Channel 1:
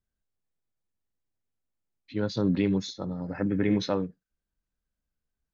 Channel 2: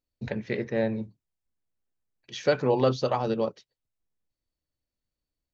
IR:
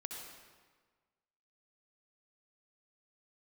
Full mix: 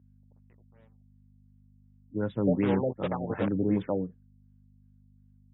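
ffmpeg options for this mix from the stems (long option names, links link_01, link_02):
-filter_complex "[0:a]highshelf=frequency=4000:gain=-8,aeval=exprs='val(0)+0.00224*(sin(2*PI*50*n/s)+sin(2*PI*2*50*n/s)/2+sin(2*PI*3*50*n/s)/3+sin(2*PI*4*50*n/s)/4+sin(2*PI*5*50*n/s)/5)':channel_layout=same,volume=-1.5dB,asplit=2[link_01][link_02];[1:a]acrusher=bits=3:mix=0:aa=0.5,volume=-7dB[link_03];[link_02]apad=whole_len=244302[link_04];[link_03][link_04]sidechaingate=range=-31dB:threshold=-41dB:ratio=16:detection=peak[link_05];[link_01][link_05]amix=inputs=2:normalize=0,highpass=frequency=60:width=0.5412,highpass=frequency=60:width=1.3066,afftfilt=real='re*lt(b*sr/1024,770*pow(3900/770,0.5+0.5*sin(2*PI*2.7*pts/sr)))':imag='im*lt(b*sr/1024,770*pow(3900/770,0.5+0.5*sin(2*PI*2.7*pts/sr)))':win_size=1024:overlap=0.75"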